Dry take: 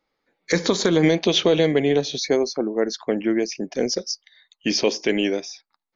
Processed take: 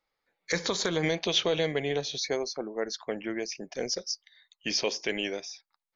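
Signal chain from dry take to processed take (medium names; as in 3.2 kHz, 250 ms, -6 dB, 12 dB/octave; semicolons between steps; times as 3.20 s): peaking EQ 270 Hz -10 dB 1.5 oct; trim -5 dB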